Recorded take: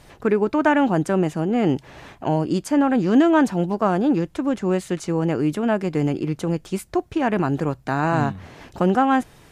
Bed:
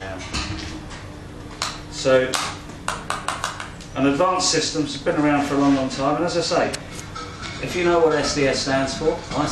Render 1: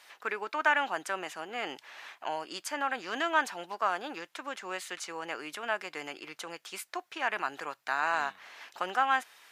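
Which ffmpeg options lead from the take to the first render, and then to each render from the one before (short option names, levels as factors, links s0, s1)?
-af "highpass=1300,equalizer=f=8600:t=o:w=1.2:g=-5"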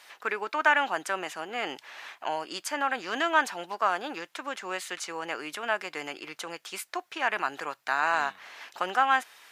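-af "volume=1.5"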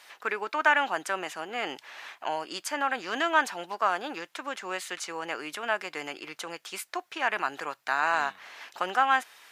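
-af anull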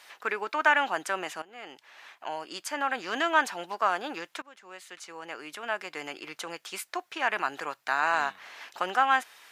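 -filter_complex "[0:a]asplit=3[s0][s1][s2];[s0]atrim=end=1.42,asetpts=PTS-STARTPTS,afade=t=out:st=1.416:d=0.004:c=hsin:silence=0.158489[s3];[s1]atrim=start=1.42:end=4.42,asetpts=PTS-STARTPTS,afade=t=in:d=1.64:silence=0.158489,afade=t=out:st=2.996:d=0.004:c=hsin:silence=0.1[s4];[s2]atrim=start=4.42,asetpts=PTS-STARTPTS,afade=t=in:d=1.95:silence=0.1[s5];[s3][s4][s5]concat=n=3:v=0:a=1"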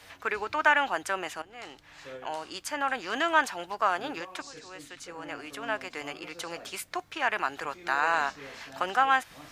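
-filter_complex "[1:a]volume=0.0422[s0];[0:a][s0]amix=inputs=2:normalize=0"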